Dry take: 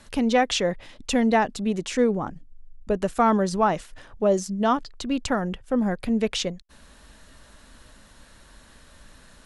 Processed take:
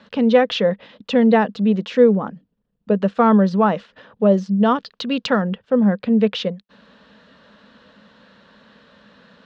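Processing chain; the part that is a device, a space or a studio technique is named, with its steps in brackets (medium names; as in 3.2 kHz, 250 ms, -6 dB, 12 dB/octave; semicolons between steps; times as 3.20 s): 4.75–5.42 s: treble shelf 2 kHz +10 dB; kitchen radio (cabinet simulation 190–3900 Hz, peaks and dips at 200 Hz +10 dB, 340 Hz -8 dB, 480 Hz +7 dB, 760 Hz -4 dB, 2.2 kHz -5 dB); trim +4 dB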